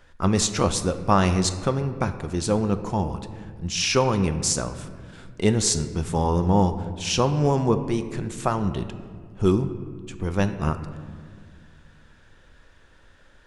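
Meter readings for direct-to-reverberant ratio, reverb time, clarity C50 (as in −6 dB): 9.0 dB, 1.9 s, 11.0 dB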